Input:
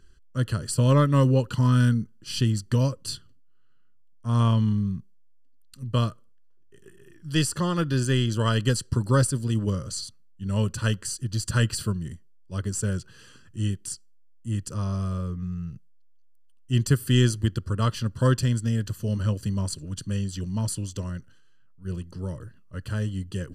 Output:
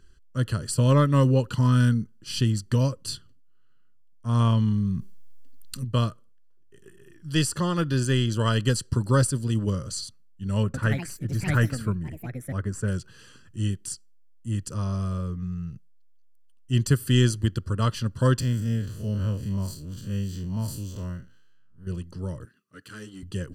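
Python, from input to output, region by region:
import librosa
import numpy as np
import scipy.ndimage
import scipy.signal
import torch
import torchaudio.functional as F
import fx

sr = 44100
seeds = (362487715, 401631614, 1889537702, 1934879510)

y = fx.chain(x, sr, fx.high_shelf(hz=8400.0, db=4.5),
    fx.env_flatten(amount_pct=50), at=(4.73, 5.85))
y = fx.chain(y, sr, fx.high_shelf_res(hz=2500.0, db=-9.0, q=1.5),
    fx.echo_pitch(ms=110, semitones=4, count=2, db_per_echo=-6.0), at=(10.63, 12.88))
y = fx.chain(y, sr, fx.spec_blur(span_ms=102.0),
    fx.resample_linear(factor=2), at=(18.4, 21.87))
y = fx.chain(y, sr, fx.halfwave_gain(db=-7.0),
    fx.highpass(hz=290.0, slope=12),
    fx.band_shelf(hz=720.0, db=-12.5, octaves=1.1), at=(22.45, 23.23))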